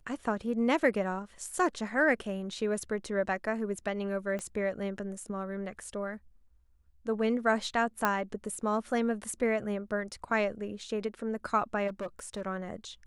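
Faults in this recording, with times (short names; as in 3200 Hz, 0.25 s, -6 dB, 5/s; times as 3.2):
4.39 pop -24 dBFS
8.05 pop -12 dBFS
11.87–12.42 clipped -32 dBFS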